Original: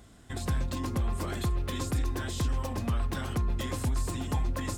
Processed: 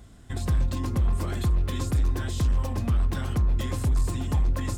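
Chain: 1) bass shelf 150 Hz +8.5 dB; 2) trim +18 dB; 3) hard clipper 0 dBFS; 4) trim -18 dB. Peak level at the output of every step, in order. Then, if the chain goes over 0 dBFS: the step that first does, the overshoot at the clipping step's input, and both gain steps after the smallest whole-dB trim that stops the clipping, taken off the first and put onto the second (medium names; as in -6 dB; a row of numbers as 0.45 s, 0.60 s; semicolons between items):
-14.0 dBFS, +4.0 dBFS, 0.0 dBFS, -18.0 dBFS; step 2, 4.0 dB; step 2 +14 dB, step 4 -14 dB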